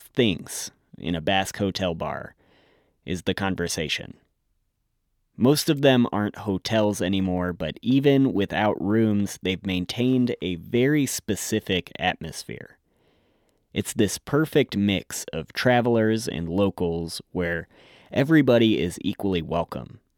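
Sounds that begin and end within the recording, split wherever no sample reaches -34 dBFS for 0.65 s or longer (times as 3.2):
3.07–4.11
5.39–12.66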